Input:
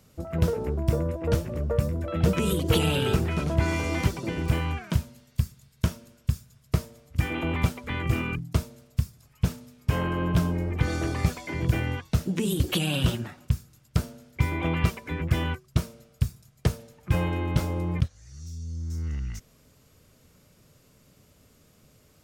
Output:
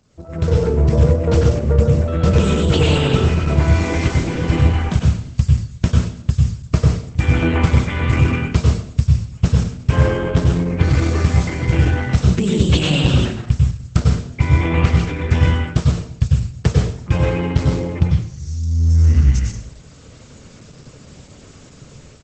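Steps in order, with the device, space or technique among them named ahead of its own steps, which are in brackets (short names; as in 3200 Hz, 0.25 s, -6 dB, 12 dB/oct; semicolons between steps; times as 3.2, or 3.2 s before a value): 5.44–6.32 dynamic EQ 230 Hz, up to +3 dB, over -39 dBFS, Q 2.4; speakerphone in a meeting room (reverb RT60 0.60 s, pre-delay 91 ms, DRR 0 dB; speakerphone echo 0.1 s, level -30 dB; AGC gain up to 16 dB; gain -1 dB; Opus 12 kbps 48000 Hz)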